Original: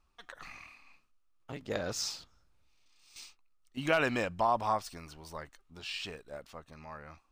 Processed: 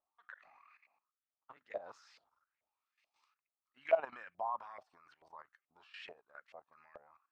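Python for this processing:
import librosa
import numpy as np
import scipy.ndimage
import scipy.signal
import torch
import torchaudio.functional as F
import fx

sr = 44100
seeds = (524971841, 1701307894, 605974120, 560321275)

y = fx.filter_lfo_bandpass(x, sr, shape='saw_up', hz=2.3, low_hz=610.0, high_hz=2200.0, q=5.2)
y = fx.level_steps(y, sr, step_db=14)
y = y * 10.0 ** (5.5 / 20.0)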